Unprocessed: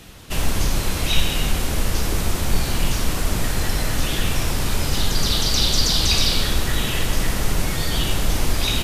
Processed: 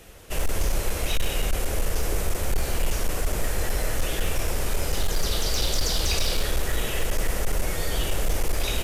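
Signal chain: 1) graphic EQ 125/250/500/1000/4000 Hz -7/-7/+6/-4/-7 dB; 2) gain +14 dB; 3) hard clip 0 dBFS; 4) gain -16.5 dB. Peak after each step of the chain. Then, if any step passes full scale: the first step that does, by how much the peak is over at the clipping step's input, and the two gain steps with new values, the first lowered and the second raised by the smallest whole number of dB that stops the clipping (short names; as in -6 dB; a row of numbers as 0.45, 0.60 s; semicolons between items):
-5.0, +9.0, 0.0, -16.5 dBFS; step 2, 9.0 dB; step 2 +5 dB, step 4 -7.5 dB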